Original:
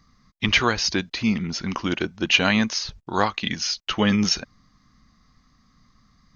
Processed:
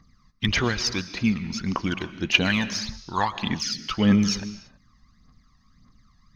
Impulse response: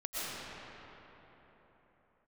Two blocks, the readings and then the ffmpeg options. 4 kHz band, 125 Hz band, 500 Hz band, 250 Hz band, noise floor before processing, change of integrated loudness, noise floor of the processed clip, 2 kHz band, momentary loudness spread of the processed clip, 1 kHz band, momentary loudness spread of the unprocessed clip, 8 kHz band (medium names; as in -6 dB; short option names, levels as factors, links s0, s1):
-3.5 dB, +1.5 dB, -4.5 dB, 0.0 dB, -62 dBFS, -2.0 dB, -60 dBFS, -3.0 dB, 10 LU, -2.5 dB, 8 LU, no reading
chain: -filter_complex "[0:a]aphaser=in_gain=1:out_gain=1:delay=1.2:decay=0.64:speed=1.7:type=triangular,asplit=2[s0][s1];[1:a]atrim=start_sample=2205,afade=t=out:st=0.39:d=0.01,atrim=end_sample=17640[s2];[s1][s2]afir=irnorm=-1:irlink=0,volume=0.178[s3];[s0][s3]amix=inputs=2:normalize=0,volume=0.501"